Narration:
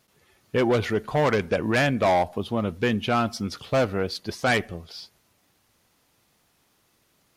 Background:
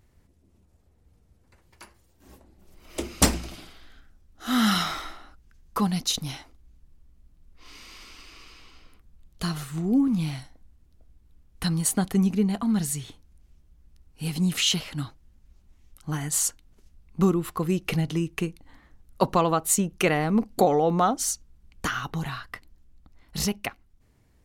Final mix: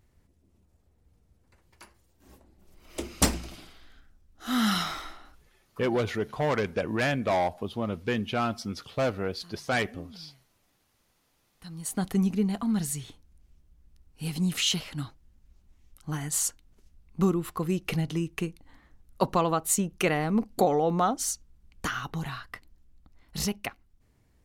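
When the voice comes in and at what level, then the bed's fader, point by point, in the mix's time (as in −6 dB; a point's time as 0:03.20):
5.25 s, −5.0 dB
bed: 0:05.42 −3.5 dB
0:05.73 −25 dB
0:11.51 −25 dB
0:12.04 −3 dB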